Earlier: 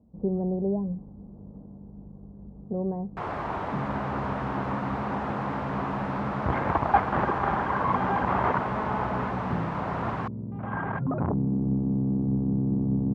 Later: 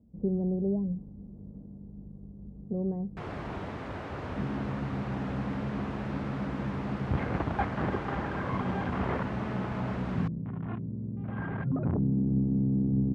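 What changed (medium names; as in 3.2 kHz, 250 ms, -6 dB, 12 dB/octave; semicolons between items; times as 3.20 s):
second sound: entry +0.65 s; master: add peaking EQ 960 Hz -12 dB 1.6 oct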